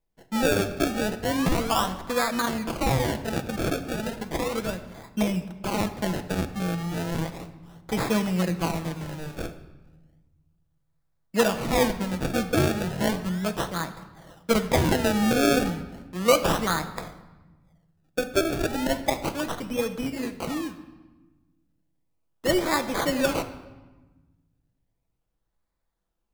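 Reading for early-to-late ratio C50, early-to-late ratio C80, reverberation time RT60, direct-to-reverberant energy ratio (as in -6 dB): 12.0 dB, 13.5 dB, 1.2 s, 8.0 dB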